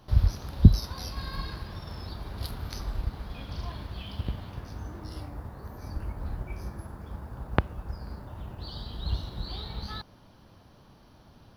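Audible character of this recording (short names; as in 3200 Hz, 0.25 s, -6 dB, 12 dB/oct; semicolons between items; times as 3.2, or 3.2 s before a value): noise floor -56 dBFS; spectral tilt -6.5 dB/oct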